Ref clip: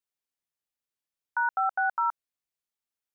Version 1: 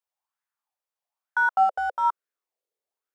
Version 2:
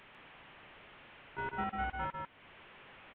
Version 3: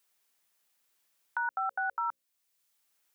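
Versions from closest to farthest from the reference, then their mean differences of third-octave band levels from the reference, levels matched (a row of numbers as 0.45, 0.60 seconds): 3, 1, 2; 1.5, 6.0, 18.5 decibels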